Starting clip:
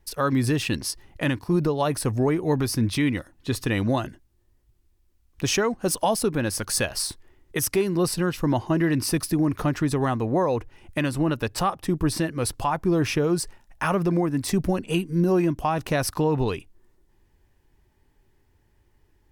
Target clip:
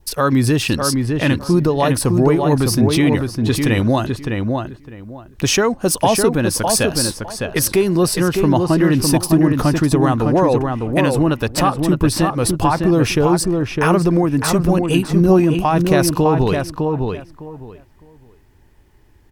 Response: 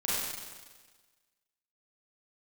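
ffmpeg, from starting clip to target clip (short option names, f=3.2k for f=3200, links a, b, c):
-filter_complex "[0:a]adynamicequalizer=threshold=0.00447:dfrequency=2000:dqfactor=2.5:tfrequency=2000:tqfactor=2.5:attack=5:release=100:ratio=0.375:range=2.5:mode=cutabove:tftype=bell,asplit=2[a][b];[b]alimiter=limit=-20.5dB:level=0:latency=1:release=220,volume=-1.5dB[c];[a][c]amix=inputs=2:normalize=0,asplit=2[d][e];[e]adelay=607,lowpass=f=2.4k:p=1,volume=-4dB,asplit=2[f][g];[g]adelay=607,lowpass=f=2.4k:p=1,volume=0.2,asplit=2[h][i];[i]adelay=607,lowpass=f=2.4k:p=1,volume=0.2[j];[d][f][h][j]amix=inputs=4:normalize=0,volume=4.5dB"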